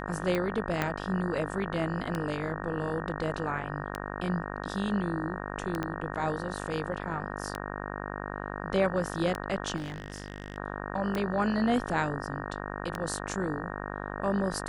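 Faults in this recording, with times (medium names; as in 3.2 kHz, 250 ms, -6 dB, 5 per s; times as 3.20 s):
buzz 50 Hz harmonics 37 -37 dBFS
tick 33 1/3 rpm -17 dBFS
0.82 s: pop -13 dBFS
5.83 s: pop -18 dBFS
9.76–10.58 s: clipped -32 dBFS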